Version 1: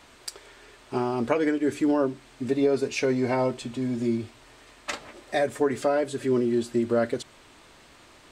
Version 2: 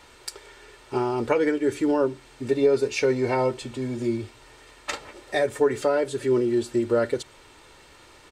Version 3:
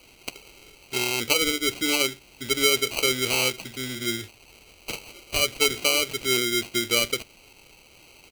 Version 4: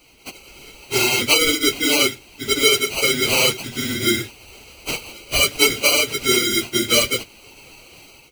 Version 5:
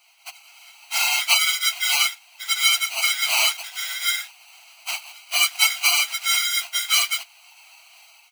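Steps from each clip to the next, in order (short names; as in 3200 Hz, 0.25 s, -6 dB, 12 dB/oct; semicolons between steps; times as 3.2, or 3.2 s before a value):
comb 2.2 ms, depth 42%; gain +1 dB
sample-and-hold 25×; resonant high shelf 1700 Hz +11.5 dB, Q 1.5; gain -5.5 dB
phase scrambler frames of 50 ms; AGC gain up to 9 dB
in parallel at -10 dB: bit-crush 5-bit; on the sum: brick-wall FIR high-pass 640 Hz; gain -4 dB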